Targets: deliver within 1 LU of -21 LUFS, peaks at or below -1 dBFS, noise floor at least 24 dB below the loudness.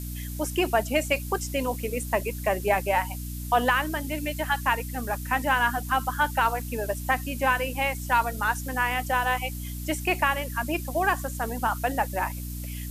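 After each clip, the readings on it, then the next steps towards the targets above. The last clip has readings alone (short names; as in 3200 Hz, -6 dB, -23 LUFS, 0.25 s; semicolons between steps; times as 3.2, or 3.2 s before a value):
hum 60 Hz; harmonics up to 300 Hz; hum level -32 dBFS; noise floor -35 dBFS; noise floor target -51 dBFS; loudness -26.5 LUFS; peak -9.5 dBFS; loudness target -21.0 LUFS
-> notches 60/120/180/240/300 Hz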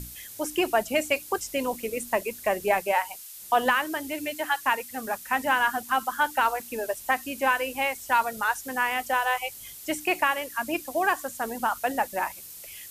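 hum none; noise floor -43 dBFS; noise floor target -51 dBFS
-> noise print and reduce 8 dB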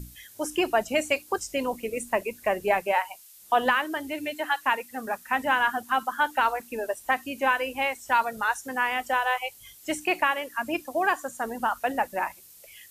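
noise floor -51 dBFS; loudness -27.0 LUFS; peak -10.5 dBFS; loudness target -21.0 LUFS
-> gain +6 dB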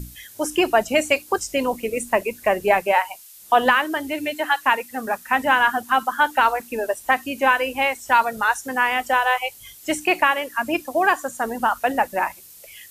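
loudness -21.0 LUFS; peak -4.5 dBFS; noise floor -45 dBFS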